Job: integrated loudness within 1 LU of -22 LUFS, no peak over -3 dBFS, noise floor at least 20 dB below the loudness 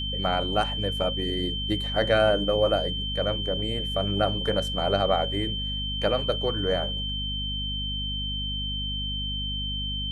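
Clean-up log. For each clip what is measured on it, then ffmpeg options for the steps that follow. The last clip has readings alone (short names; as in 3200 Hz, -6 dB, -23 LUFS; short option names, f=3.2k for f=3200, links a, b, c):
hum 50 Hz; harmonics up to 250 Hz; hum level -30 dBFS; steady tone 3100 Hz; tone level -30 dBFS; loudness -26.0 LUFS; peak -9.0 dBFS; loudness target -22.0 LUFS
-> -af "bandreject=f=50:t=h:w=4,bandreject=f=100:t=h:w=4,bandreject=f=150:t=h:w=4,bandreject=f=200:t=h:w=4,bandreject=f=250:t=h:w=4"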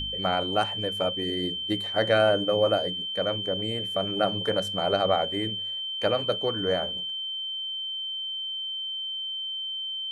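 hum none; steady tone 3100 Hz; tone level -30 dBFS
-> -af "bandreject=f=3.1k:w=30"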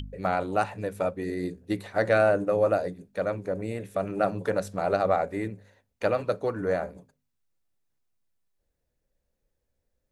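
steady tone none; loudness -28.0 LUFS; peak -10.5 dBFS; loudness target -22.0 LUFS
-> -af "volume=6dB"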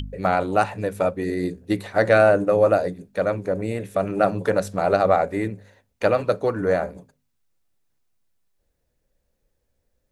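loudness -22.0 LUFS; peak -4.5 dBFS; noise floor -73 dBFS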